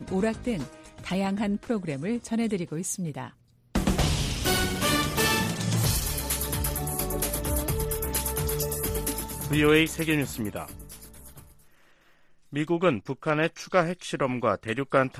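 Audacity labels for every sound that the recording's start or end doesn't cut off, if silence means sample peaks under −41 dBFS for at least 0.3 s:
3.750000	11.430000	sound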